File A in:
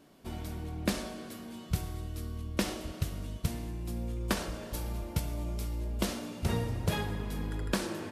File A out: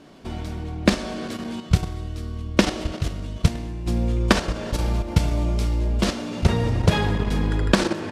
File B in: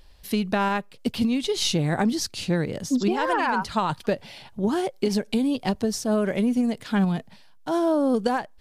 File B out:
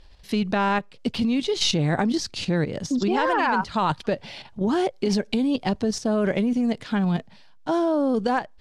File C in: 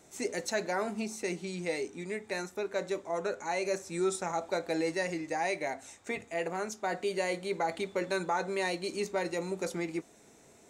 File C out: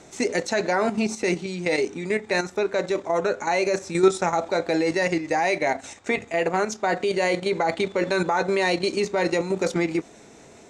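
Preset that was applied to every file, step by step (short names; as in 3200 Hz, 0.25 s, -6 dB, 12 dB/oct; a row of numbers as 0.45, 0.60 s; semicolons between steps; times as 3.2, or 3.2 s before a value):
LPF 6400 Hz 12 dB/oct; level quantiser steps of 9 dB; match loudness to -24 LUFS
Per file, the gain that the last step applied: +15.0, +5.5, +14.5 dB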